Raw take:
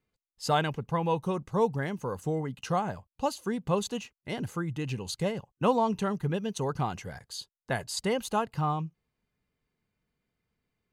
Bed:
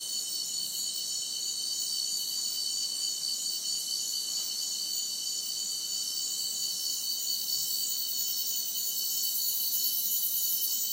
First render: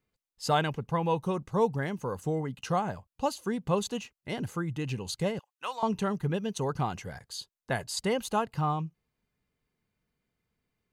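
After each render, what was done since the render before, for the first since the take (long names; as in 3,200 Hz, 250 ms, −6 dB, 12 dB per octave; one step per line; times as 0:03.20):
0:05.39–0:05.83: high-pass filter 1,400 Hz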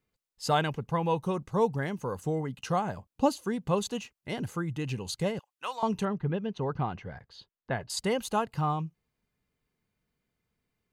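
0:02.97–0:03.37: parametric band 260 Hz +9 dB 2 octaves
0:06.05–0:07.90: high-frequency loss of the air 290 metres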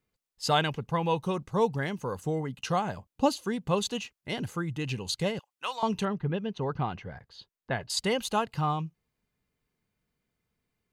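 dynamic equaliser 3,500 Hz, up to +6 dB, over −49 dBFS, Q 0.81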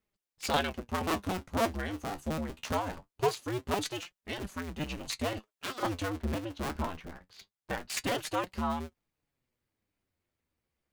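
sub-harmonics by changed cycles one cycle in 2, inverted
flanger 0.23 Hz, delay 4.5 ms, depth 9.7 ms, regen +51%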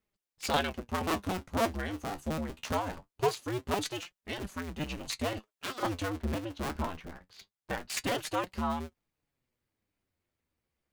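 no processing that can be heard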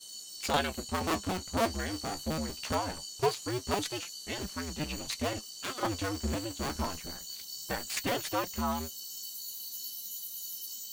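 mix in bed −11.5 dB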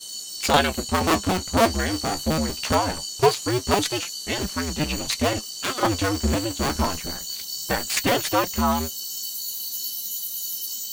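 level +10.5 dB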